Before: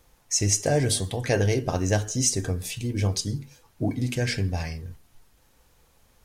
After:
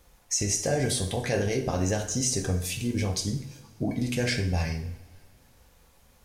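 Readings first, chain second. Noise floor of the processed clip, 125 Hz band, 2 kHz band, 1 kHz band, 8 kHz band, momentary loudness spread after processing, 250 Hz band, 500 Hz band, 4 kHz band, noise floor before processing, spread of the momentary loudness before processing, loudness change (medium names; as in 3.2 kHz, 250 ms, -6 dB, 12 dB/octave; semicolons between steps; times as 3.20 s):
-60 dBFS, -3.5 dB, -1.0 dB, -2.0 dB, -2.5 dB, 8 LU, -0.5 dB, -2.0 dB, -2.0 dB, -62 dBFS, 10 LU, -2.5 dB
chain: peak limiter -17.5 dBFS, peak gain reduction 8.5 dB; two-slope reverb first 0.5 s, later 2.6 s, from -21 dB, DRR 4 dB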